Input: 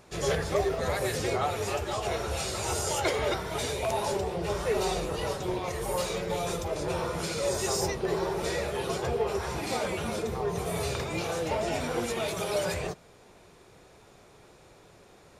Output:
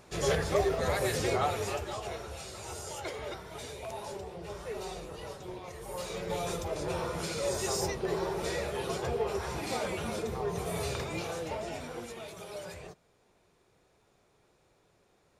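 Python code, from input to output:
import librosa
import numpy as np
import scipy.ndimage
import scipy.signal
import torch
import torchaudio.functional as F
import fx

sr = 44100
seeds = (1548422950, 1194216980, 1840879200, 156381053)

y = fx.gain(x, sr, db=fx.line((1.47, -0.5), (2.37, -11.0), (5.84, -11.0), (6.32, -3.0), (11.05, -3.0), (12.28, -13.0)))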